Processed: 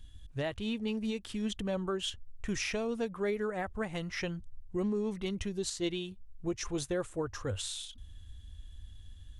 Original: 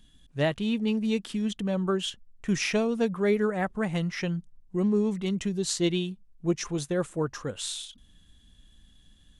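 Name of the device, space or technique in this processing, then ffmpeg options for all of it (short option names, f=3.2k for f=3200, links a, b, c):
car stereo with a boomy subwoofer: -filter_complex "[0:a]lowshelf=f=120:t=q:w=3:g=9.5,alimiter=limit=-23.5dB:level=0:latency=1:release=296,asettb=1/sr,asplit=3[a][b][c];[a]atrim=end=5.014[d];[b]atrim=start=5.01:end=5.52,asetpts=PTS-STARTPTS,afade=t=in:d=0.004:c=qsin,afade=t=out:st=0.506:d=0.004:c=qsin,bandreject=f=7.4k:w=5.1[e];[c]atrim=start=5.516[f];[d][e]acrossfade=d=0.004:c1=hsin:c2=qsin[g];[g][f]acrossfade=d=0.004:c1=qsin:c2=hsin,volume=-1.5dB"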